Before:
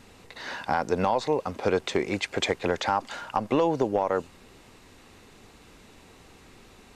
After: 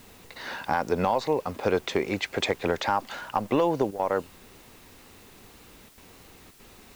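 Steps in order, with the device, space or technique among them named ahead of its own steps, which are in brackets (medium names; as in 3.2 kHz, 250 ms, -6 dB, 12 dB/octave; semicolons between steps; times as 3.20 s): worn cassette (low-pass 6.7 kHz; wow and flutter; level dips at 3.91/5.89/6.51 s, 84 ms -13 dB; white noise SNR 27 dB)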